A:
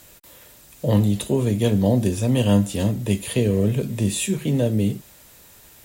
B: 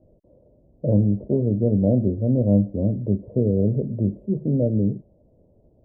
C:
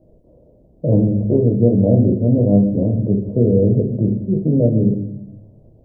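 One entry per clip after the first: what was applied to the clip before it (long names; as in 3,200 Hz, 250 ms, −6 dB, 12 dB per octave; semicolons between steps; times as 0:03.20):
elliptic low-pass filter 620 Hz, stop band 70 dB
rectangular room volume 190 cubic metres, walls mixed, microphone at 0.64 metres; level +4 dB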